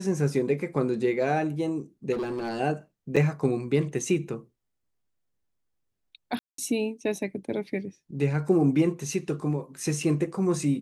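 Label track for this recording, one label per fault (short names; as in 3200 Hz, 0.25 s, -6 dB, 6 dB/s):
2.120000	2.610000	clipped -26.5 dBFS
3.160000	3.170000	gap 6.3 ms
6.390000	6.580000	gap 0.193 s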